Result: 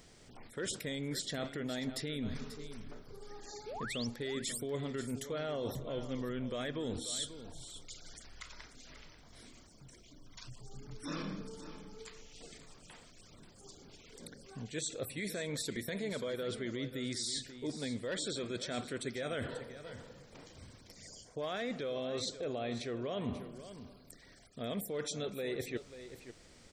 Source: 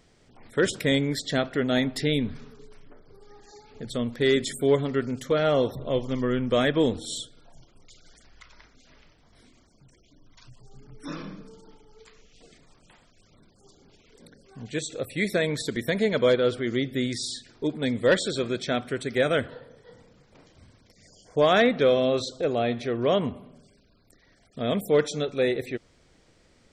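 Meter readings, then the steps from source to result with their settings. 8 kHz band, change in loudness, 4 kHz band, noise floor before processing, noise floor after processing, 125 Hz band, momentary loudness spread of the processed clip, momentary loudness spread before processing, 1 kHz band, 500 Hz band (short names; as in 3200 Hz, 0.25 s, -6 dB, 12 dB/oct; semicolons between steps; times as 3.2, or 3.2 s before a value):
-3.5 dB, -14.0 dB, -9.0 dB, -61 dBFS, -59 dBFS, -11.5 dB, 18 LU, 12 LU, -14.5 dB, -15.0 dB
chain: high shelf 5100 Hz +8.5 dB; limiter -19 dBFS, peak gain reduction 9 dB; reverse; compressor 6:1, threshold -36 dBFS, peak gain reduction 12.5 dB; reverse; painted sound rise, 3.66–4.07, 380–6100 Hz -43 dBFS; on a send: echo 0.538 s -12.5 dB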